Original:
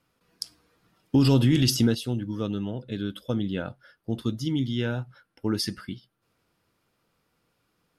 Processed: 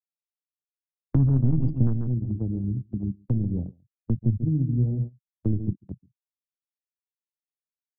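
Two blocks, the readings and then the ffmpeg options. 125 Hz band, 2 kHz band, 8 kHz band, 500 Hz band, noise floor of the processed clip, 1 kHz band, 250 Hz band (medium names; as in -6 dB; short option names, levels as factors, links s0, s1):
+4.0 dB, under -25 dB, under -40 dB, -9.0 dB, under -85 dBFS, under -10 dB, -2.5 dB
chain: -filter_complex "[0:a]aeval=exprs='0.316*(cos(1*acos(clip(val(0)/0.316,-1,1)))-cos(1*PI/2))+0.0794*(cos(3*acos(clip(val(0)/0.316,-1,1)))-cos(3*PI/2))':c=same,aemphasis=mode=reproduction:type=75fm,asplit=2[s0][s1];[s1]adynamicsmooth=sensitivity=8:basefreq=2000,volume=1.12[s2];[s0][s2]amix=inputs=2:normalize=0,flanger=delay=4.3:depth=8.6:regen=70:speed=0.99:shape=sinusoidal,afwtdn=0.0251,lowpass=4900,afftfilt=real='re*gte(hypot(re,im),0.00794)':imag='im*gte(hypot(re,im),0.00794)':win_size=1024:overlap=0.75,aecho=1:1:140:0.282,asubboost=boost=11:cutoff=220,agate=range=0.112:threshold=0.0447:ratio=16:detection=peak,acrossover=split=130|460[s3][s4][s5];[s3]acompressor=threshold=0.1:ratio=4[s6];[s4]acompressor=threshold=0.0398:ratio=4[s7];[s5]acompressor=threshold=0.00562:ratio=4[s8];[s6][s7][s8]amix=inputs=3:normalize=0"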